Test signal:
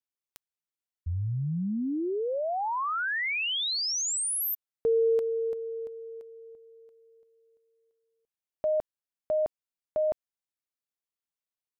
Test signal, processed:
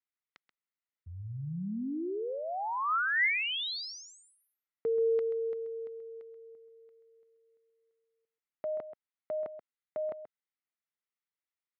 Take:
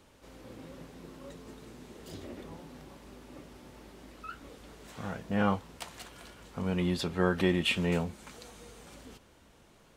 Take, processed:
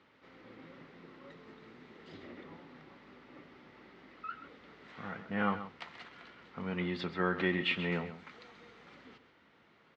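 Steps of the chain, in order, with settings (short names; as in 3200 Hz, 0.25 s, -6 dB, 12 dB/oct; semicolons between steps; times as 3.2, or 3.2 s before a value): speaker cabinet 140–4300 Hz, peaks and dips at 600 Hz -3 dB, 1300 Hz +6 dB, 2000 Hz +9 dB; on a send: echo 0.132 s -12 dB; on the sum: gain -5 dB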